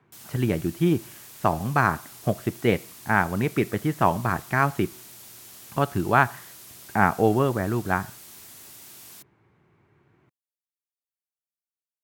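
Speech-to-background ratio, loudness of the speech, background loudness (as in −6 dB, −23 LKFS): 18.5 dB, −24.5 LKFS, −43.0 LKFS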